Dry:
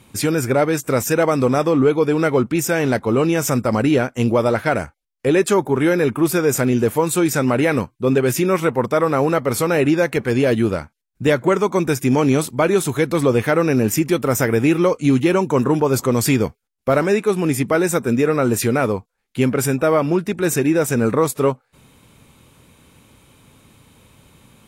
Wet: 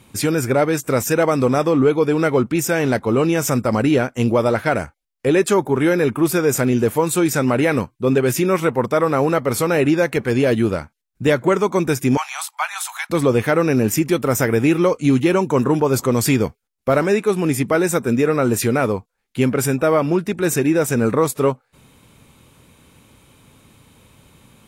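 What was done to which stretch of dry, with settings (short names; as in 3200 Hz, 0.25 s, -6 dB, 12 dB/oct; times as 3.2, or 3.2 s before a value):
12.17–13.1 steep high-pass 750 Hz 72 dB/oct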